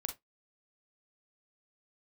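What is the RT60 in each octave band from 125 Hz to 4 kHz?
0.20 s, 0.20 s, 0.15 s, 0.15 s, 0.15 s, 0.10 s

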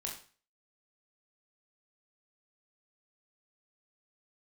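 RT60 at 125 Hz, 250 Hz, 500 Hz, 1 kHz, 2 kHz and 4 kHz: 0.40 s, 0.40 s, 0.40 s, 0.40 s, 0.40 s, 0.40 s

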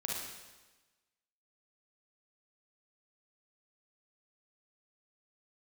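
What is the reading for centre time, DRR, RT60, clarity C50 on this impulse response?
83 ms, -3.5 dB, 1.2 s, -1.5 dB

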